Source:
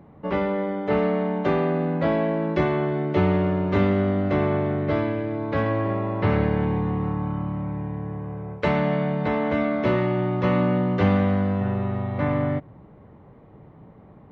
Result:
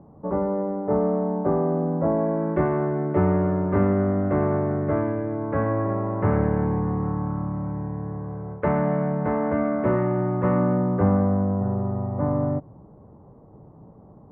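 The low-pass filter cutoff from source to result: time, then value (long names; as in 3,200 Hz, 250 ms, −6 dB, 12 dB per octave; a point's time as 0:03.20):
low-pass filter 24 dB per octave
0:02.08 1,100 Hz
0:02.54 1,600 Hz
0:10.47 1,600 Hz
0:11.45 1,100 Hz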